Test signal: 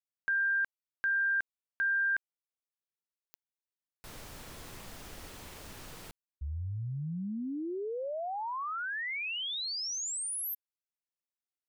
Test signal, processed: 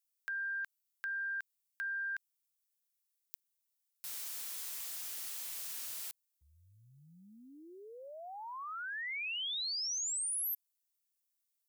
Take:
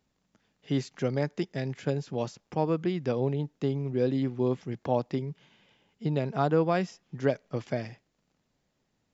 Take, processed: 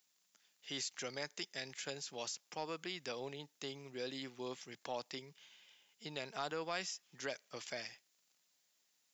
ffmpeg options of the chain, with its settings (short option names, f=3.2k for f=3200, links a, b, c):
-af "aderivative,acompressor=threshold=-46dB:ratio=6:attack=4.5:release=23:knee=6:detection=peak,volume=9dB"